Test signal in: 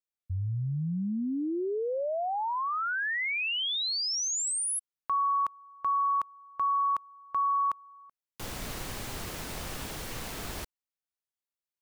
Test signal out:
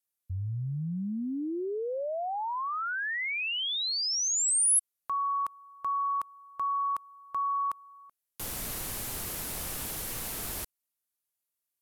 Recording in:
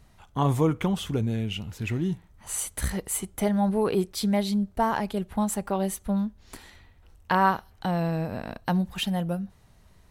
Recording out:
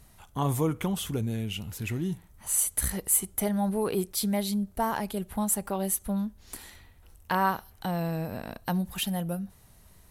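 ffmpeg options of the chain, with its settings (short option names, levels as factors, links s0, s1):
-filter_complex "[0:a]equalizer=f=12000:w=0.73:g=14,asplit=2[s0][s1];[s1]acompressor=threshold=0.02:ratio=6:attack=0.22:release=102:knee=6:detection=peak,volume=0.75[s2];[s0][s2]amix=inputs=2:normalize=0,volume=0.562"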